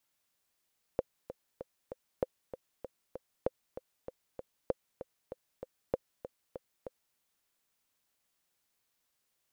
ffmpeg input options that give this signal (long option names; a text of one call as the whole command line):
ffmpeg -f lavfi -i "aevalsrc='pow(10,(-15.5-12.5*gte(mod(t,4*60/194),60/194))/20)*sin(2*PI*517*mod(t,60/194))*exp(-6.91*mod(t,60/194)/0.03)':duration=6.18:sample_rate=44100" out.wav